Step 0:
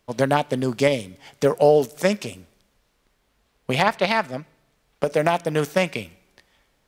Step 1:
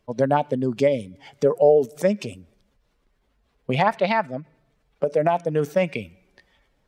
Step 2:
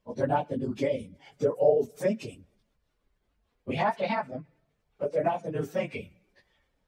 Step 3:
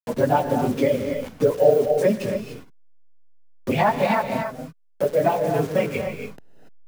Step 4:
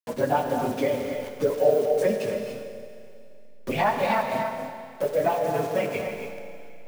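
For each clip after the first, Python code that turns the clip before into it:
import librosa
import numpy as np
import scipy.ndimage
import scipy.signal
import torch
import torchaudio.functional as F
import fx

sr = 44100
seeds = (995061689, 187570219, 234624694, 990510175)

y1 = fx.spec_expand(x, sr, power=1.5)
y2 = fx.phase_scramble(y1, sr, seeds[0], window_ms=50)
y2 = y2 * 10.0 ** (-7.5 / 20.0)
y3 = fx.delta_hold(y2, sr, step_db=-43.0)
y3 = fx.rev_gated(y3, sr, seeds[1], gate_ms=310, shape='rising', drr_db=6.5)
y3 = fx.band_squash(y3, sr, depth_pct=40)
y3 = y3 * 10.0 ** (7.5 / 20.0)
y4 = fx.low_shelf(y3, sr, hz=360.0, db=-6.0)
y4 = fx.rev_schroeder(y4, sr, rt60_s=2.6, comb_ms=27, drr_db=7.0)
y4 = y4 * 10.0 ** (-2.5 / 20.0)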